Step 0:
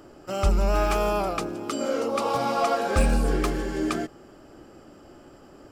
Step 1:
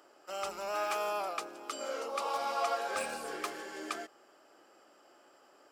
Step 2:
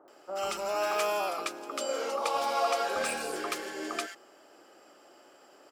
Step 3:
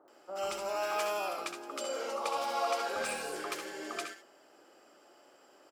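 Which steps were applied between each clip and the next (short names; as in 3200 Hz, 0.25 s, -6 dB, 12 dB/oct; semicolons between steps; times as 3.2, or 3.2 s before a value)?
HPF 640 Hz 12 dB/oct; gain -6.5 dB
bands offset in time lows, highs 80 ms, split 1200 Hz; gain +6 dB
early reflections 66 ms -8.5 dB, 78 ms -11 dB; gain -4.5 dB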